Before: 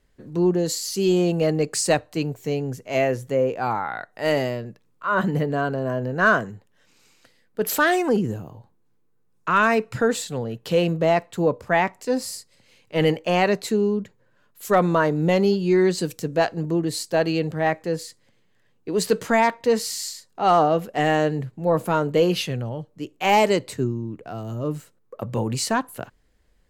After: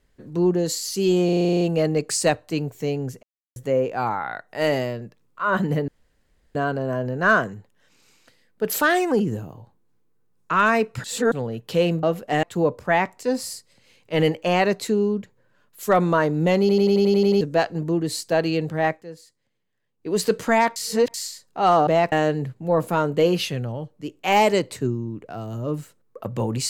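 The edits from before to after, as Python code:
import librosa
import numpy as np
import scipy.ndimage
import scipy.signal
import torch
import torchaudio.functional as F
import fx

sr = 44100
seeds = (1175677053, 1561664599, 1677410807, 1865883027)

y = fx.edit(x, sr, fx.stutter(start_s=1.25, slice_s=0.04, count=10),
    fx.silence(start_s=2.87, length_s=0.33),
    fx.insert_room_tone(at_s=5.52, length_s=0.67),
    fx.reverse_span(start_s=10.01, length_s=0.28),
    fx.swap(start_s=11.0, length_s=0.25, other_s=20.69, other_length_s=0.4),
    fx.stutter_over(start_s=15.42, slice_s=0.09, count=9),
    fx.fade_down_up(start_s=17.72, length_s=1.2, db=-13.0, fade_s=0.13),
    fx.reverse_span(start_s=19.58, length_s=0.38), tone=tone)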